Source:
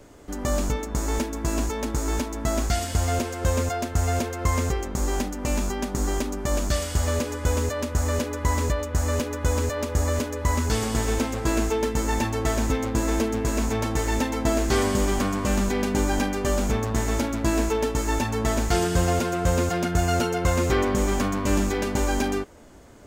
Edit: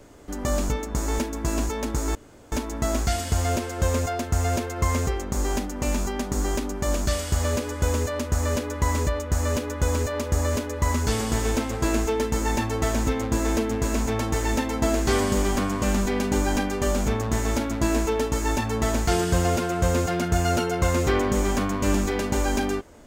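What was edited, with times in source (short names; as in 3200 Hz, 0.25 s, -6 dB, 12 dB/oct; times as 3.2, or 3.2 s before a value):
2.15 insert room tone 0.37 s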